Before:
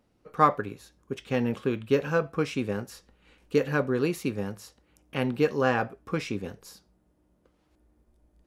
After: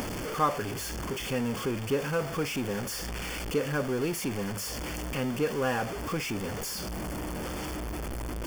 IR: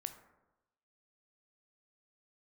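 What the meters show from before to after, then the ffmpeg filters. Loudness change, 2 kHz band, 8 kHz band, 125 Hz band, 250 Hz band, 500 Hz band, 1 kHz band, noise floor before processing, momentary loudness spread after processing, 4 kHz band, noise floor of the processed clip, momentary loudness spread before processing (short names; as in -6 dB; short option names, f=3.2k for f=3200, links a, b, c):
-3.5 dB, -1.0 dB, +11.0 dB, -0.5 dB, -2.0 dB, -3.5 dB, -3.5 dB, -69 dBFS, 7 LU, +5.5 dB, -36 dBFS, 16 LU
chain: -af "aeval=exprs='val(0)+0.5*0.0668*sgn(val(0))':c=same,asuperstop=centerf=3900:order=12:qfactor=6.6,acompressor=mode=upward:threshold=-25dB:ratio=2.5,volume=-7dB"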